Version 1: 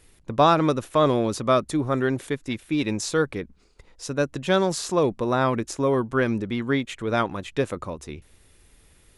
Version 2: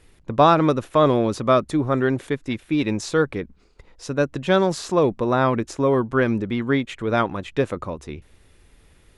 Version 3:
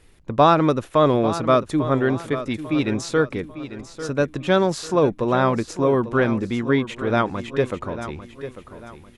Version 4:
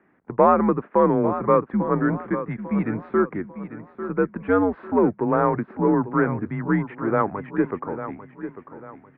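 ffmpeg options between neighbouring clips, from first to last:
-af "highshelf=f=5.6k:g=-10.5,volume=3dB"
-af "aecho=1:1:846|1692|2538|3384:0.237|0.0854|0.0307|0.0111"
-filter_complex "[0:a]asplit=2[a][b];[b]asoftclip=type=tanh:threshold=-14dB,volume=-3.5dB[c];[a][c]amix=inputs=2:normalize=0,highpass=f=270:t=q:w=0.5412,highpass=f=270:t=q:w=1.307,lowpass=f=2k:t=q:w=0.5176,lowpass=f=2k:t=q:w=0.7071,lowpass=f=2k:t=q:w=1.932,afreqshift=-100,volume=-3.5dB"

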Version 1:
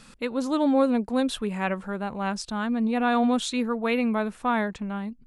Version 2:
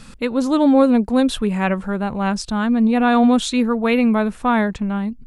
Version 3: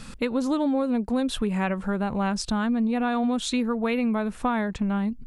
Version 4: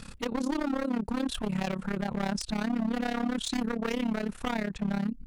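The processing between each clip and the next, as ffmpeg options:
-af "lowshelf=f=170:g=9,volume=6dB"
-af "acompressor=threshold=-22dB:ratio=6"
-af "aeval=exprs='0.0841*(abs(mod(val(0)/0.0841+3,4)-2)-1)':c=same,tremolo=f=34:d=0.857"

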